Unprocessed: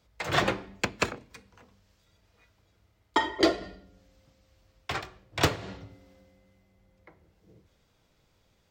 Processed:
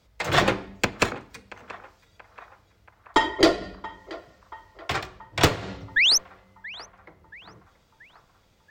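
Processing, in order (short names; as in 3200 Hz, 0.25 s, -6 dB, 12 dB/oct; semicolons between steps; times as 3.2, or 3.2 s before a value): painted sound rise, 5.96–6.18, 1600–6500 Hz -23 dBFS; added harmonics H 4 -21 dB, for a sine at -9.5 dBFS; narrowing echo 0.68 s, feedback 61%, band-pass 1100 Hz, level -16 dB; gain +5 dB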